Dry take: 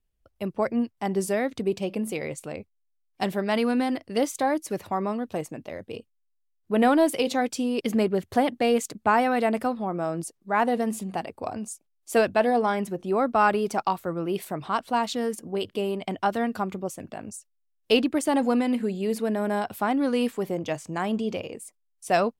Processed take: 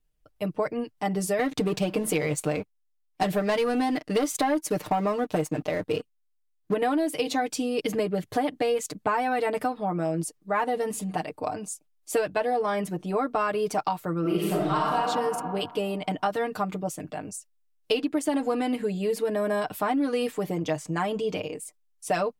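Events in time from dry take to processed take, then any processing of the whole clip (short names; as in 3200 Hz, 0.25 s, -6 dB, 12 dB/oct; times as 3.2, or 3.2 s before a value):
1.39–6.74 sample leveller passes 2
14.2–14.96 reverb throw, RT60 1.6 s, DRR -7 dB
whole clip: comb 6.6 ms, depth 84%; compressor, threshold -22 dBFS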